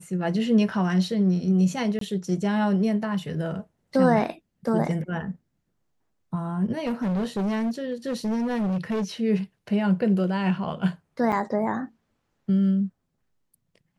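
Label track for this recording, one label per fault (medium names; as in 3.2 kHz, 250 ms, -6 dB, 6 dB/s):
1.990000	2.010000	dropout 23 ms
6.770000	9.040000	clipped -23 dBFS
11.320000	11.330000	dropout 6 ms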